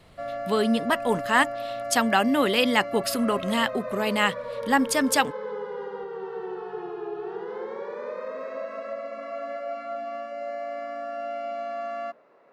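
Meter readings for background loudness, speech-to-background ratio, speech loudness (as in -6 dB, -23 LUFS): -34.0 LUFS, 10.0 dB, -24.0 LUFS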